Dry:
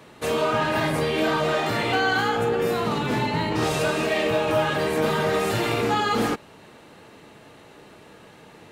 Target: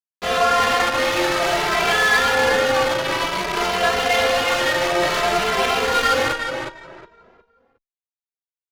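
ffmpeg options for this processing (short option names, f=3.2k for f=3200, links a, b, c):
-filter_complex "[0:a]highpass=480,bandreject=f=830:w=12,asetrate=49501,aresample=44100,atempo=0.890899,asplit=2[a][b];[b]asoftclip=type=hard:threshold=-26.5dB,volume=-11dB[c];[a][c]amix=inputs=2:normalize=0,acrusher=bits=3:mix=0:aa=0.000001,aresample=16000,aresample=44100,asplit=2[d][e];[e]aecho=0:1:362|724|1086|1448:0.562|0.169|0.0506|0.0152[f];[d][f]amix=inputs=2:normalize=0,adynamicsmooth=sensitivity=2.5:basefreq=1.1k,asplit=2[g][h];[h]adelay=2.6,afreqshift=0.56[i];[g][i]amix=inputs=2:normalize=1,volume=6.5dB"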